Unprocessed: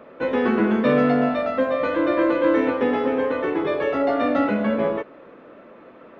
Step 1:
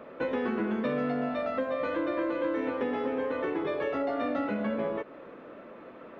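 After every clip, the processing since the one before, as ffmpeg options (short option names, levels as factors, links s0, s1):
-af "acompressor=threshold=0.0447:ratio=4,volume=0.841"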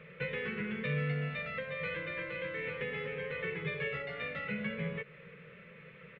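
-af "firequalizer=gain_entry='entry(100,0);entry(160,12);entry(270,-29);entry(450,-4);entry(680,-22);entry(2100,8);entry(5600,-12)':delay=0.05:min_phase=1"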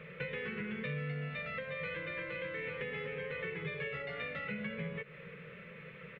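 -af "acompressor=threshold=0.00794:ratio=2.5,volume=1.41"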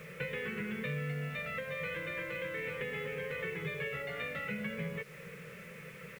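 -af "acrusher=bits=9:mix=0:aa=0.000001,volume=1.19"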